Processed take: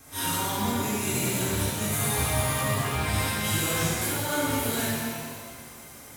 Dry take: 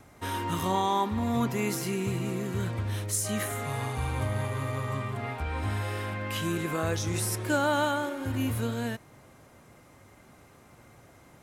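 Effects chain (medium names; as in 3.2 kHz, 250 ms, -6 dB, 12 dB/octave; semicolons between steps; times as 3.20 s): pre-emphasis filter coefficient 0.8; compressor with a negative ratio -42 dBFS, ratio -0.5; granular stretch 0.54×, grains 192 ms; pitch-shifted reverb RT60 1.8 s, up +7 st, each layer -8 dB, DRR -10 dB; trim +6.5 dB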